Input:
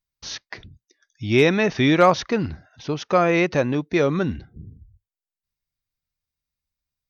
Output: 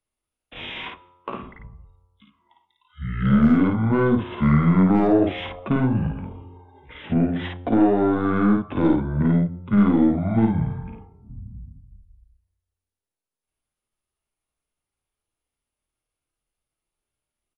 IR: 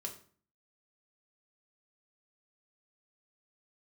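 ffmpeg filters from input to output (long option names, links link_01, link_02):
-filter_complex "[0:a]equalizer=frequency=530:width=0.35:gain=11,bandreject=frequency=154.7:width_type=h:width=4,bandreject=frequency=309.4:width_type=h:width=4,bandreject=frequency=464.1:width_type=h:width=4,bandreject=frequency=618.8:width_type=h:width=4,bandreject=frequency=773.5:width_type=h:width=4,bandreject=frequency=928.2:width_type=h:width=4,bandreject=frequency=1082.9:width_type=h:width=4,bandreject=frequency=1237.6:width_type=h:width=4,bandreject=frequency=1392.3:width_type=h:width=4,bandreject=frequency=1547:width_type=h:width=4,bandreject=frequency=1701.7:width_type=h:width=4,bandreject=frequency=1856.4:width_type=h:width=4,bandreject=frequency=2011.1:width_type=h:width=4,bandreject=frequency=2165.8:width_type=h:width=4,bandreject=frequency=2320.5:width_type=h:width=4,acrossover=split=110|220|1900[link_01][link_02][link_03][link_04];[link_01]acompressor=threshold=-39dB:ratio=4[link_05];[link_02]acompressor=threshold=-29dB:ratio=4[link_06];[link_03]acompressor=threshold=-14dB:ratio=4[link_07];[link_04]acompressor=threshold=-30dB:ratio=4[link_08];[link_05][link_06][link_07][link_08]amix=inputs=4:normalize=0,atempo=0.7,aeval=exprs='(tanh(2.82*val(0)+0.2)-tanh(0.2))/2.82':channel_layout=same,asplit=2[link_09][link_10];[link_10]adelay=31,volume=-3dB[link_11];[link_09][link_11]amix=inputs=2:normalize=0,asplit=2[link_12][link_13];[1:a]atrim=start_sample=2205[link_14];[link_13][link_14]afir=irnorm=-1:irlink=0,volume=-10.5dB[link_15];[link_12][link_15]amix=inputs=2:normalize=0,asetrate=25442,aresample=44100,volume=-4dB"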